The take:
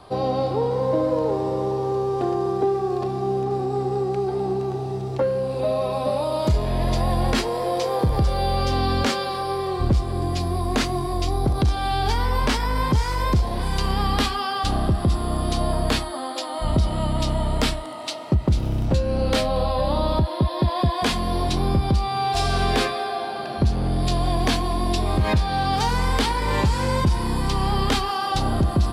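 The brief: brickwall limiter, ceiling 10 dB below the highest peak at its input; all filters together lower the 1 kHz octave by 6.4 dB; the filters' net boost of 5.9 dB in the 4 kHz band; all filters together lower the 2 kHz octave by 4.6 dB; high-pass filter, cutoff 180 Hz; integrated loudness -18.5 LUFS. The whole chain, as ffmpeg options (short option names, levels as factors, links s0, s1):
-af "highpass=180,equalizer=f=1000:t=o:g=-8,equalizer=f=2000:t=o:g=-6,equalizer=f=4000:t=o:g=9,volume=2.66,alimiter=limit=0.398:level=0:latency=1"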